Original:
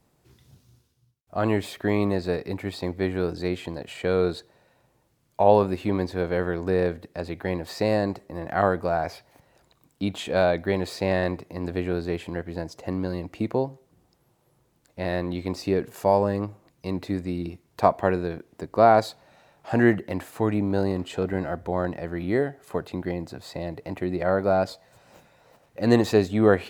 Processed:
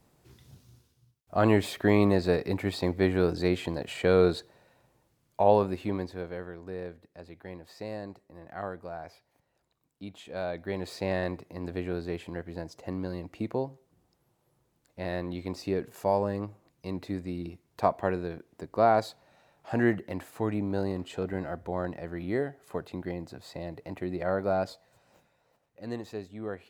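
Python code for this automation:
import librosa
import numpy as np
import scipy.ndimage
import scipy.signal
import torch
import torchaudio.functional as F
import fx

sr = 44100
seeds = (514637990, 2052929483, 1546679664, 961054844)

y = fx.gain(x, sr, db=fx.line((4.28, 1.0), (5.91, -6.0), (6.51, -15.0), (10.27, -15.0), (10.94, -6.0), (24.68, -6.0), (26.02, -18.5)))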